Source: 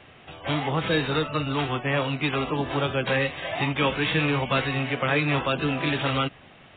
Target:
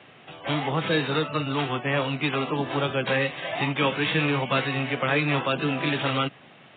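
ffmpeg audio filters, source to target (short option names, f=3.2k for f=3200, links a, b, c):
-af "highpass=f=120:w=0.5412,highpass=f=120:w=1.3066" -ar 16000 -c:a mp2 -b:a 64k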